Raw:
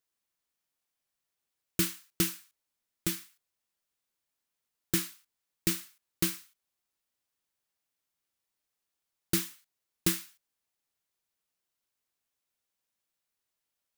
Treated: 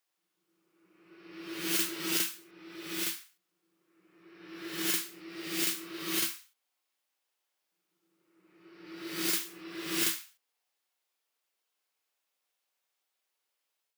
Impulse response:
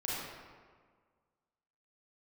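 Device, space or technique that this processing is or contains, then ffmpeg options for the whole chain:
ghost voice: -filter_complex "[0:a]equalizer=f=3.2k:t=o:w=0.77:g=2.5,areverse[a];[1:a]atrim=start_sample=2205[b];[a][b]afir=irnorm=-1:irlink=0,areverse,highpass=430"

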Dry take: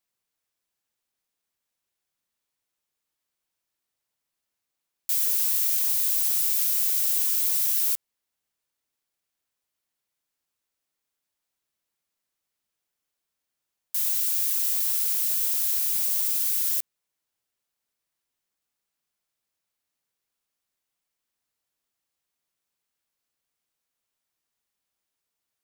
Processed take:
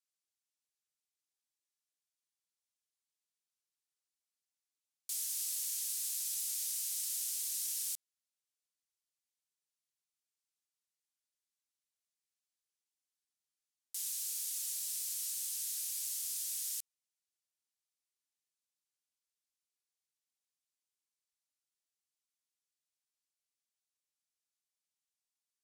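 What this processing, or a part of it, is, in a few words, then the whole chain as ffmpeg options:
piezo pickup straight into a mixer: -af "lowpass=7.9k,aderivative,volume=-3.5dB"

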